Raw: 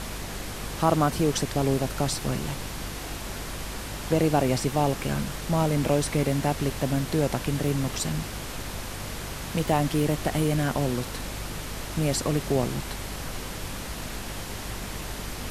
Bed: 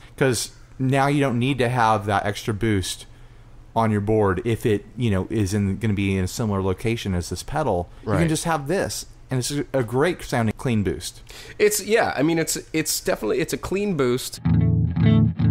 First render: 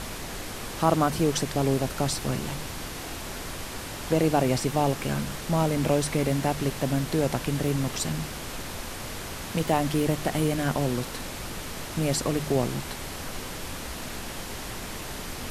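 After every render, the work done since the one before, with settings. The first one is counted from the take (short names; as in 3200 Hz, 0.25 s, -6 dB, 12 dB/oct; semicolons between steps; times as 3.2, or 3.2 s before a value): de-hum 50 Hz, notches 4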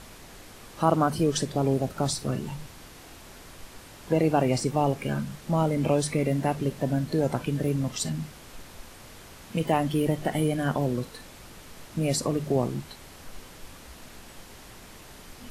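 noise print and reduce 11 dB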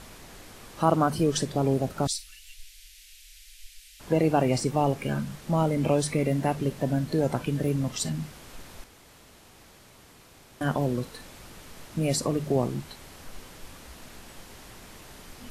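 2.07–4 inverse Chebyshev band-stop 100–970 Hz, stop band 50 dB; 8.84–10.61 room tone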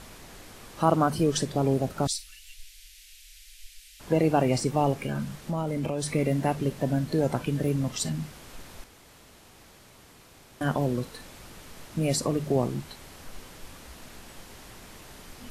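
5.03–6.15 compressor, threshold -25 dBFS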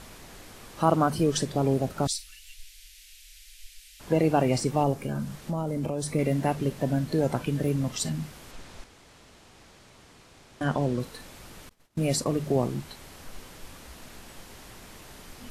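4.83–6.19 dynamic EQ 2500 Hz, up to -7 dB, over -49 dBFS, Q 0.81; 8.51–11 LPF 8300 Hz; 11.69–12.4 expander -32 dBFS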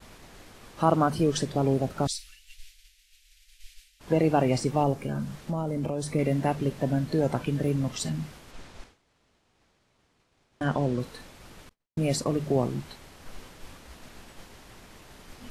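expander -43 dBFS; high shelf 7600 Hz -7 dB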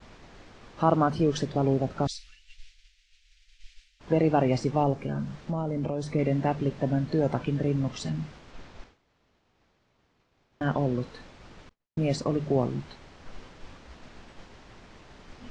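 LPF 6800 Hz 24 dB/oct; high shelf 3700 Hz -6 dB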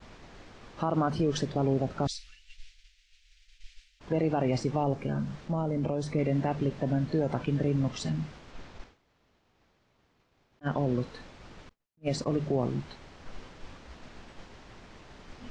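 limiter -18.5 dBFS, peak gain reduction 9 dB; attack slew limiter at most 560 dB/s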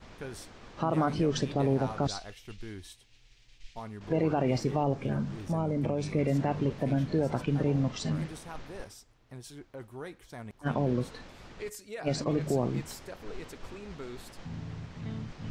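add bed -22 dB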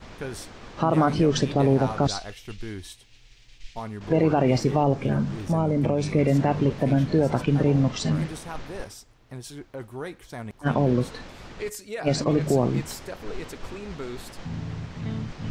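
gain +7 dB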